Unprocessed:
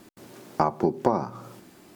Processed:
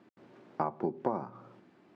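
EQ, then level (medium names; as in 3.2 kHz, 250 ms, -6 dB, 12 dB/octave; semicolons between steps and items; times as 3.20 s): band-pass 120–2500 Hz; -9.0 dB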